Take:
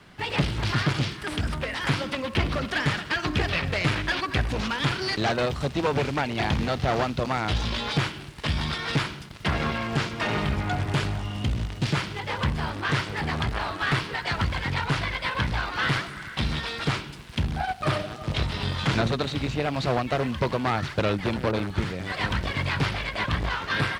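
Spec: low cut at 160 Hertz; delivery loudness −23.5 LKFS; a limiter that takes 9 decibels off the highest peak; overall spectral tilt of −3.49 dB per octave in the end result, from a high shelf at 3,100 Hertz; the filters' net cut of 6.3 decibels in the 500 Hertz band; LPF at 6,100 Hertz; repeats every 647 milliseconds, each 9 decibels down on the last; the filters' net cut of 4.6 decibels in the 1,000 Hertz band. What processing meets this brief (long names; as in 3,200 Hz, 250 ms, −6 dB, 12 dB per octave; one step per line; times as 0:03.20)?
high-pass filter 160 Hz
low-pass filter 6,100 Hz
parametric band 500 Hz −7 dB
parametric band 1,000 Hz −3 dB
high-shelf EQ 3,100 Hz −7 dB
brickwall limiter −23.5 dBFS
repeating echo 647 ms, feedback 35%, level −9 dB
level +10 dB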